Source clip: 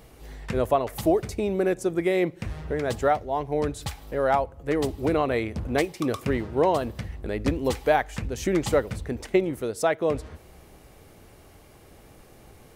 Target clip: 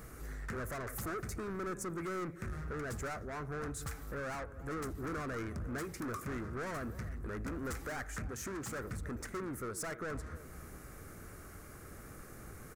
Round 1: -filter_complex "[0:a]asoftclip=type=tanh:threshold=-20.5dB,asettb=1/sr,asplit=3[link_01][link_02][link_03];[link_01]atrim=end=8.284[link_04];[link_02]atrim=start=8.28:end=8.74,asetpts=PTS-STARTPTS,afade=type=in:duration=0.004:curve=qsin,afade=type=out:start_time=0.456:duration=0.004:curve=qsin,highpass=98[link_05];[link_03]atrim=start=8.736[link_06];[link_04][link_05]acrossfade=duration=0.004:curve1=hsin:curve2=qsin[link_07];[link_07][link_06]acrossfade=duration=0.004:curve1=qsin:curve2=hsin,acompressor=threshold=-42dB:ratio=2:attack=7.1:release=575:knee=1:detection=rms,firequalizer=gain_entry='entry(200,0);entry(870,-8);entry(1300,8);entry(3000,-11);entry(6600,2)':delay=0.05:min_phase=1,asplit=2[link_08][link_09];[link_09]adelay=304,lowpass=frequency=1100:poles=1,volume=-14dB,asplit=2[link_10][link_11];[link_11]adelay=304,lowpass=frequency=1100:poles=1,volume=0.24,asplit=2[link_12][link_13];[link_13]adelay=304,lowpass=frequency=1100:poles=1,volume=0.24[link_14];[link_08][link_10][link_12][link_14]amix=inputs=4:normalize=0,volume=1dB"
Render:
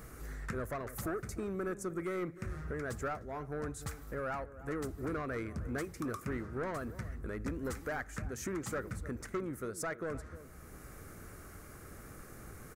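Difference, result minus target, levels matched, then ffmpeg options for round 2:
soft clipping: distortion −8 dB
-filter_complex "[0:a]asoftclip=type=tanh:threshold=-32.5dB,asettb=1/sr,asplit=3[link_01][link_02][link_03];[link_01]atrim=end=8.284[link_04];[link_02]atrim=start=8.28:end=8.74,asetpts=PTS-STARTPTS,afade=type=in:duration=0.004:curve=qsin,afade=type=out:start_time=0.456:duration=0.004:curve=qsin,highpass=98[link_05];[link_03]atrim=start=8.736[link_06];[link_04][link_05]acrossfade=duration=0.004:curve1=hsin:curve2=qsin[link_07];[link_07][link_06]acrossfade=duration=0.004:curve1=qsin:curve2=hsin,acompressor=threshold=-42dB:ratio=2:attack=7.1:release=575:knee=1:detection=rms,firequalizer=gain_entry='entry(200,0);entry(870,-8);entry(1300,8);entry(3000,-11);entry(6600,2)':delay=0.05:min_phase=1,asplit=2[link_08][link_09];[link_09]adelay=304,lowpass=frequency=1100:poles=1,volume=-14dB,asplit=2[link_10][link_11];[link_11]adelay=304,lowpass=frequency=1100:poles=1,volume=0.24,asplit=2[link_12][link_13];[link_13]adelay=304,lowpass=frequency=1100:poles=1,volume=0.24[link_14];[link_08][link_10][link_12][link_14]amix=inputs=4:normalize=0,volume=1dB"

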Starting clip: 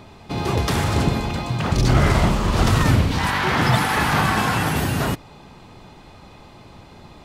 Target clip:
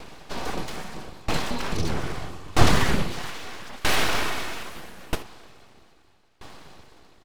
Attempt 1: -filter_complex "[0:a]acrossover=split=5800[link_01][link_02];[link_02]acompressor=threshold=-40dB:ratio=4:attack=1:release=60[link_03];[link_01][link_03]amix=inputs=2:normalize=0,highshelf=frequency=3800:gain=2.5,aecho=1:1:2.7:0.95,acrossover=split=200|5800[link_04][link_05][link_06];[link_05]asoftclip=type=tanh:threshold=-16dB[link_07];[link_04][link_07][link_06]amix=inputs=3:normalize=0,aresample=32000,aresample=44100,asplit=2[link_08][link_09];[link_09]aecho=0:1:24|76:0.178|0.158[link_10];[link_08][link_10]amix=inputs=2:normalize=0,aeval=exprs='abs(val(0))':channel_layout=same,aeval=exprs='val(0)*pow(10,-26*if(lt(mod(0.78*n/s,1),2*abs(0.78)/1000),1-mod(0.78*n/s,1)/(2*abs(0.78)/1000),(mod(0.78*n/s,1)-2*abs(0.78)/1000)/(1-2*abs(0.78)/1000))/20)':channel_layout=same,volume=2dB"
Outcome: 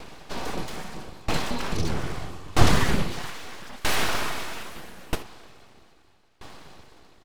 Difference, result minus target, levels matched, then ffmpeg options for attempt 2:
soft clipping: distortion +8 dB
-filter_complex "[0:a]acrossover=split=5800[link_01][link_02];[link_02]acompressor=threshold=-40dB:ratio=4:attack=1:release=60[link_03];[link_01][link_03]amix=inputs=2:normalize=0,highshelf=frequency=3800:gain=2.5,aecho=1:1:2.7:0.95,acrossover=split=200|5800[link_04][link_05][link_06];[link_05]asoftclip=type=tanh:threshold=-9.5dB[link_07];[link_04][link_07][link_06]amix=inputs=3:normalize=0,aresample=32000,aresample=44100,asplit=2[link_08][link_09];[link_09]aecho=0:1:24|76:0.178|0.158[link_10];[link_08][link_10]amix=inputs=2:normalize=0,aeval=exprs='abs(val(0))':channel_layout=same,aeval=exprs='val(0)*pow(10,-26*if(lt(mod(0.78*n/s,1),2*abs(0.78)/1000),1-mod(0.78*n/s,1)/(2*abs(0.78)/1000),(mod(0.78*n/s,1)-2*abs(0.78)/1000)/(1-2*abs(0.78)/1000))/20)':channel_layout=same,volume=2dB"

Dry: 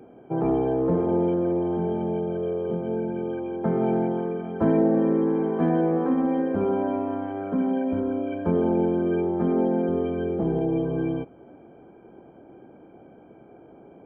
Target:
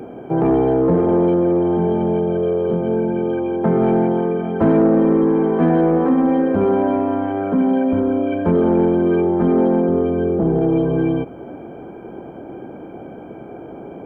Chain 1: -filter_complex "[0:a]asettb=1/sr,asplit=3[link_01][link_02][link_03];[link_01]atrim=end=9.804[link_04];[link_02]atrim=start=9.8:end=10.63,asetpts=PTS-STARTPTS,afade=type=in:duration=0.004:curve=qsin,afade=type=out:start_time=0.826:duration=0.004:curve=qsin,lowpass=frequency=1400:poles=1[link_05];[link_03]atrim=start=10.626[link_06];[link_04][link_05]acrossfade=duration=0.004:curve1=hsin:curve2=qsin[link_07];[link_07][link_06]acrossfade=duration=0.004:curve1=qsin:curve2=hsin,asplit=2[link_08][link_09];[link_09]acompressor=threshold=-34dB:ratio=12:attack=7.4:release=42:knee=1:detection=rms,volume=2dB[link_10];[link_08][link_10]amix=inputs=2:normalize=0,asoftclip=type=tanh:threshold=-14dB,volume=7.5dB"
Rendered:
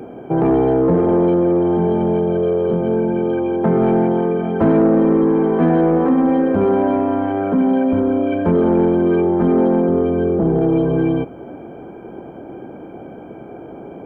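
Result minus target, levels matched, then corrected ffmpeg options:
downward compressor: peak gain reduction −7 dB
-filter_complex "[0:a]asettb=1/sr,asplit=3[link_01][link_02][link_03];[link_01]atrim=end=9.804[link_04];[link_02]atrim=start=9.8:end=10.63,asetpts=PTS-STARTPTS,afade=type=in:duration=0.004:curve=qsin,afade=type=out:start_time=0.826:duration=0.004:curve=qsin,lowpass=frequency=1400:poles=1[link_05];[link_03]atrim=start=10.626[link_06];[link_04][link_05]acrossfade=duration=0.004:curve1=hsin:curve2=qsin[link_07];[link_07][link_06]acrossfade=duration=0.004:curve1=qsin:curve2=hsin,asplit=2[link_08][link_09];[link_09]acompressor=threshold=-41.5dB:ratio=12:attack=7.4:release=42:knee=1:detection=rms,volume=2dB[link_10];[link_08][link_10]amix=inputs=2:normalize=0,asoftclip=type=tanh:threshold=-14dB,volume=7.5dB"

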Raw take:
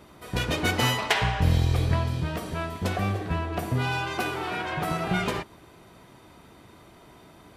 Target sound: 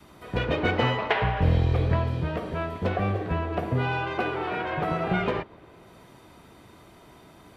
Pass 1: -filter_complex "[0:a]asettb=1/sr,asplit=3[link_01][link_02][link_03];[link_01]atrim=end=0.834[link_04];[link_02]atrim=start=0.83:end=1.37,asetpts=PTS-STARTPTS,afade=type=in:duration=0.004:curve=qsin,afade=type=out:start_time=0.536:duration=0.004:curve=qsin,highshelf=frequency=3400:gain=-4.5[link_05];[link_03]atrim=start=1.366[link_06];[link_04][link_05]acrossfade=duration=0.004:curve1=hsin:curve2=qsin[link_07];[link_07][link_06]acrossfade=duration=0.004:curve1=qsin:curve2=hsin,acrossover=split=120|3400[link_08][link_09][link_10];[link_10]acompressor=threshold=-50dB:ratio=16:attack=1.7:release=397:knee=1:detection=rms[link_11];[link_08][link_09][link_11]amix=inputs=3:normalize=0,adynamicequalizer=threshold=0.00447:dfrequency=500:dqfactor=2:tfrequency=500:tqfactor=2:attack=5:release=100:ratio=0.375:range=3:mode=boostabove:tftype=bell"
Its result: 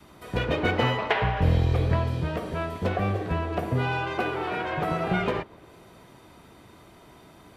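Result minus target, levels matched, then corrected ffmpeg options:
downward compressor: peak gain reduction −8 dB
-filter_complex "[0:a]asettb=1/sr,asplit=3[link_01][link_02][link_03];[link_01]atrim=end=0.834[link_04];[link_02]atrim=start=0.83:end=1.37,asetpts=PTS-STARTPTS,afade=type=in:duration=0.004:curve=qsin,afade=type=out:start_time=0.536:duration=0.004:curve=qsin,highshelf=frequency=3400:gain=-4.5[link_05];[link_03]atrim=start=1.366[link_06];[link_04][link_05]acrossfade=duration=0.004:curve1=hsin:curve2=qsin[link_07];[link_07][link_06]acrossfade=duration=0.004:curve1=qsin:curve2=hsin,acrossover=split=120|3400[link_08][link_09][link_10];[link_10]acompressor=threshold=-58.5dB:ratio=16:attack=1.7:release=397:knee=1:detection=rms[link_11];[link_08][link_09][link_11]amix=inputs=3:normalize=0,adynamicequalizer=threshold=0.00447:dfrequency=500:dqfactor=2:tfrequency=500:tqfactor=2:attack=5:release=100:ratio=0.375:range=3:mode=boostabove:tftype=bell"

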